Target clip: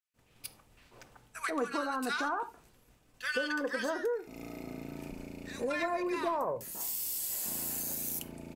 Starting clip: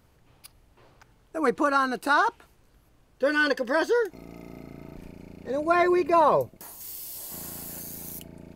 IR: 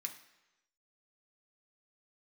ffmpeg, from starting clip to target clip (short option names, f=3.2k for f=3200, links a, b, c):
-filter_complex "[0:a]aeval=exprs='0.355*(cos(1*acos(clip(val(0)/0.355,-1,1)))-cos(1*PI/2))+0.0501*(cos(2*acos(clip(val(0)/0.355,-1,1)))-cos(2*PI/2))+0.00708*(cos(8*acos(clip(val(0)/0.355,-1,1)))-cos(8*PI/2))':c=same,acrossover=split=1400[a][b];[a]adelay=140[c];[c][b]amix=inputs=2:normalize=0,agate=range=-33dB:threshold=-55dB:ratio=3:detection=peak,asplit=2[d][e];[1:a]atrim=start_sample=2205,atrim=end_sample=4410[f];[e][f]afir=irnorm=-1:irlink=0,volume=0.5dB[g];[d][g]amix=inputs=2:normalize=0,acompressor=threshold=-32dB:ratio=4"